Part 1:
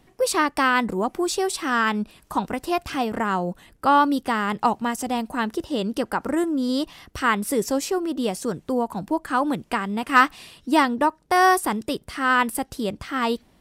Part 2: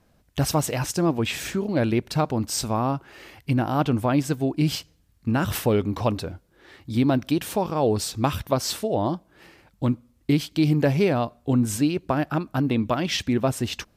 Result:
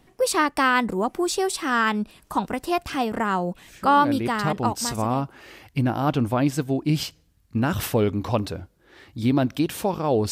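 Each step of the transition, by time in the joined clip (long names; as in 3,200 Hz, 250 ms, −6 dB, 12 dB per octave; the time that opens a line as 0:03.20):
part 1
0:04.48: continue with part 2 from 0:02.20, crossfade 1.88 s equal-power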